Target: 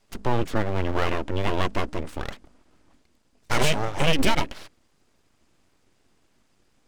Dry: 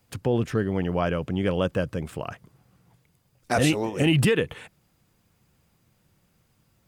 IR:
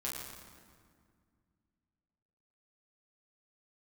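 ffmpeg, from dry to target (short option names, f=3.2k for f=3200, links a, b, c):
-af "lowpass=f=8.8k:w=0.5412,lowpass=f=8.8k:w=1.3066,bandreject=f=50:t=h:w=6,bandreject=f=100:t=h:w=6,bandreject=f=150:t=h:w=6,aeval=exprs='abs(val(0))':c=same,volume=3dB"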